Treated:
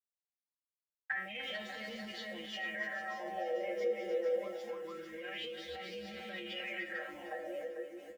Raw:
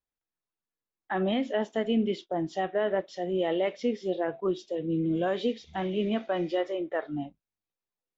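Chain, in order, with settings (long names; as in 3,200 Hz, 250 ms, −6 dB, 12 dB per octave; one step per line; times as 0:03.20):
delay that plays each chunk backwards 477 ms, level −11 dB
downward compressor 8 to 1, threshold −32 dBFS, peak gain reduction 10.5 dB
bit reduction 10 bits
comb filter 3.8 ms, depth 86%
mid-hump overdrive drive 11 dB, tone 5,300 Hz, clips at −20.5 dBFS
tuned comb filter 70 Hz, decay 0.24 s, harmonics odd, mix 100%
brickwall limiter −40 dBFS, peak gain reduction 11.5 dB
octave-band graphic EQ 125/250/500/1,000/2,000/4,000 Hz +7/−11/+3/−9/+10/−7 dB
0:01.43–0:02.12: leveller curve on the samples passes 1
echo machine with several playback heads 149 ms, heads second and third, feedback 42%, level −6.5 dB
auto-filter bell 0.25 Hz 440–4,500 Hz +15 dB
level +1.5 dB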